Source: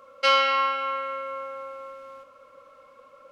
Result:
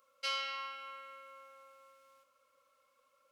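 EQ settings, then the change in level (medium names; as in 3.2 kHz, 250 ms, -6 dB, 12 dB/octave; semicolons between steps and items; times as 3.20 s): pre-emphasis filter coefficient 0.9; -5.5 dB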